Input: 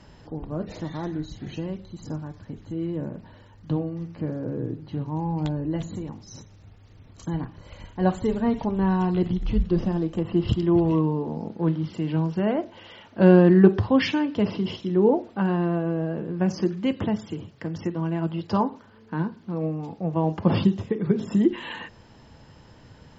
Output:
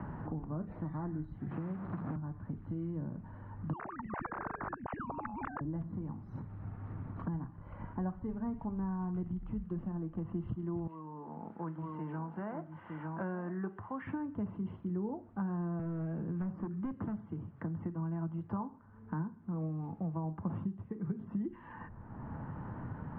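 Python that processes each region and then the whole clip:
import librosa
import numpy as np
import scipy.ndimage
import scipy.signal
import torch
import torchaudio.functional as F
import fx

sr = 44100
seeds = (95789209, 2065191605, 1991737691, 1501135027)

y = fx.chain(x, sr, fx.delta_mod(bps=64000, step_db=-31.5),
    fx.highpass(hz=130.0, slope=12),
    fx.band_squash(depth_pct=100), at=(1.51, 2.16))
y = fx.chain(y, sr, fx.sine_speech(),
    fx.spectral_comp(ratio=10.0), at=(3.73, 5.61))
y = fx.chain(y, sr, fx.highpass(hz=1400.0, slope=6),
    fx.echo_single(ms=909, db=-7.5), at=(10.87, 14.07))
y = fx.chain(y, sr, fx.overload_stage(gain_db=21.5),
    fx.band_squash(depth_pct=70), at=(15.79, 17.21))
y = scipy.signal.sosfilt(scipy.signal.butter(4, 1300.0, 'lowpass', fs=sr, output='sos'), y)
y = fx.peak_eq(y, sr, hz=490.0, db=-12.5, octaves=1.5)
y = fx.band_squash(y, sr, depth_pct=100)
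y = y * librosa.db_to_amplitude(-8.0)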